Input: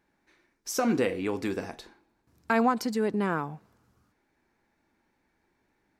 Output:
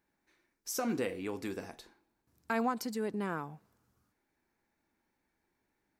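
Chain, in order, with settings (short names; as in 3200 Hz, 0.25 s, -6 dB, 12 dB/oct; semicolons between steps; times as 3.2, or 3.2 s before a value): high shelf 8400 Hz +10 dB; gain -8 dB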